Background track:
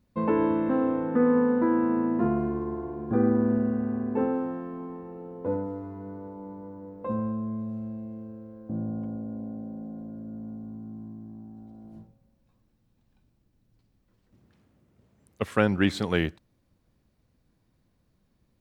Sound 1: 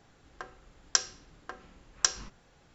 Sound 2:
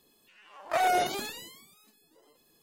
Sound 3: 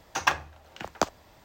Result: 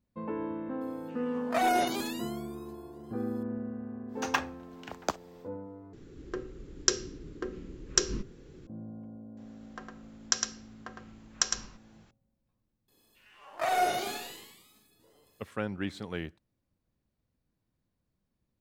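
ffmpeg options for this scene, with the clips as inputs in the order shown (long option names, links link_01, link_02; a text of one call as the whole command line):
ffmpeg -i bed.wav -i cue0.wav -i cue1.wav -i cue2.wav -filter_complex "[2:a]asplit=2[link_01][link_02];[1:a]asplit=2[link_03][link_04];[0:a]volume=-11.5dB[link_05];[link_03]lowshelf=frequency=530:width_type=q:width=3:gain=11[link_06];[link_04]aecho=1:1:108:0.562[link_07];[link_02]aecho=1:1:40|92|159.6|247.5|361.7:0.631|0.398|0.251|0.158|0.1[link_08];[link_05]asplit=2[link_09][link_10];[link_09]atrim=end=5.934[link_11];[link_06]atrim=end=2.74[link_12];[link_10]atrim=start=8.666[link_13];[link_01]atrim=end=2.62,asetpts=PTS-STARTPTS,volume=-1.5dB,afade=type=in:duration=0.004:curve=hsin,afade=type=out:start_time=2.616:duration=0.004:curve=hsin,adelay=810[link_14];[3:a]atrim=end=1.44,asetpts=PTS-STARTPTS,volume=-5.5dB,afade=type=in:duration=0.1,afade=type=out:start_time=1.34:duration=0.1,adelay=4070[link_15];[link_07]atrim=end=2.74,asetpts=PTS-STARTPTS,volume=-2.5dB,afade=type=in:duration=0.004:curve=hsin,afade=type=out:start_time=2.736:duration=0.004:curve=hsin,adelay=9370[link_16];[link_08]atrim=end=2.62,asetpts=PTS-STARTPTS,volume=-4dB,afade=type=in:duration=0.004:curve=hsin,afade=type=out:start_time=2.616:duration=0.004:curve=hsin,adelay=12880[link_17];[link_11][link_12]acrossfade=duration=0.004:curve1=hsin:curve2=hsin[link_18];[link_18][link_13]acrossfade=duration=0.004:curve1=hsin:curve2=hsin[link_19];[link_19][link_14][link_15][link_16][link_17]amix=inputs=5:normalize=0" out.wav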